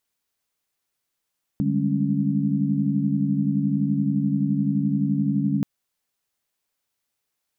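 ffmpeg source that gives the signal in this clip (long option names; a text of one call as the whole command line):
ffmpeg -f lavfi -i "aevalsrc='0.0562*(sin(2*PI*146.83*t)+sin(2*PI*196*t)+sin(2*PI*207.65*t)+sin(2*PI*277.18*t))':duration=4.03:sample_rate=44100" out.wav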